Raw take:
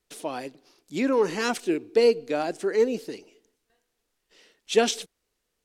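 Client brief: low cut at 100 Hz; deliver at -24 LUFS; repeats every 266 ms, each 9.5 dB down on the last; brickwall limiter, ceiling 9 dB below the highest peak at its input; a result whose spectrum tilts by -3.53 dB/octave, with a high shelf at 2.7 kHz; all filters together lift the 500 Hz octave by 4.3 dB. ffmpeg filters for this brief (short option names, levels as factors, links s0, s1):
-af "highpass=100,equalizer=f=500:t=o:g=5,highshelf=f=2700:g=-6.5,alimiter=limit=0.237:level=0:latency=1,aecho=1:1:266|532|798|1064:0.335|0.111|0.0365|0.012,volume=1.06"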